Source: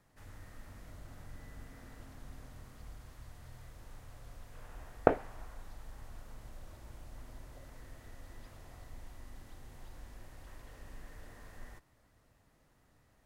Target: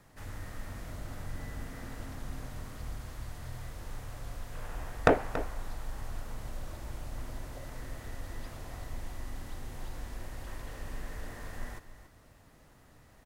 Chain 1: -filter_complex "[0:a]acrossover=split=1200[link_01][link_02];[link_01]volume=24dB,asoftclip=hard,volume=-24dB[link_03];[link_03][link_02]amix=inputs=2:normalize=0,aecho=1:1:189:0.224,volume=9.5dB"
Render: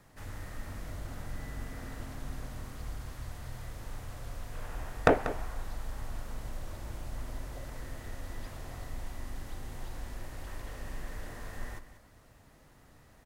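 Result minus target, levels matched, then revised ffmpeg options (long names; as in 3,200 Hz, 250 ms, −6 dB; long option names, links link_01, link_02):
echo 92 ms early
-filter_complex "[0:a]acrossover=split=1200[link_01][link_02];[link_01]volume=24dB,asoftclip=hard,volume=-24dB[link_03];[link_03][link_02]amix=inputs=2:normalize=0,aecho=1:1:281:0.224,volume=9.5dB"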